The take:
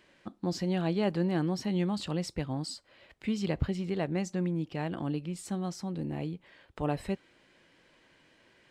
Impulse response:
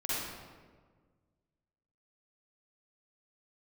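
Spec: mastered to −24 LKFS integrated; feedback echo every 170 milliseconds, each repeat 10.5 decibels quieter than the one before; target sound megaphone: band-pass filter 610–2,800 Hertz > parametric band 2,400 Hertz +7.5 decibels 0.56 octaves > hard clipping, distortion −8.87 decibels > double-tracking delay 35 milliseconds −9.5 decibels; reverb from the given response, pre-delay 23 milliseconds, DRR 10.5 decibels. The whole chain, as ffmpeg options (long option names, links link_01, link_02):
-filter_complex "[0:a]aecho=1:1:170|340|510:0.299|0.0896|0.0269,asplit=2[link_01][link_02];[1:a]atrim=start_sample=2205,adelay=23[link_03];[link_02][link_03]afir=irnorm=-1:irlink=0,volume=-16.5dB[link_04];[link_01][link_04]amix=inputs=2:normalize=0,highpass=610,lowpass=2800,equalizer=frequency=2400:width_type=o:width=0.56:gain=7.5,asoftclip=type=hard:threshold=-34.5dB,asplit=2[link_05][link_06];[link_06]adelay=35,volume=-9.5dB[link_07];[link_05][link_07]amix=inputs=2:normalize=0,volume=18.5dB"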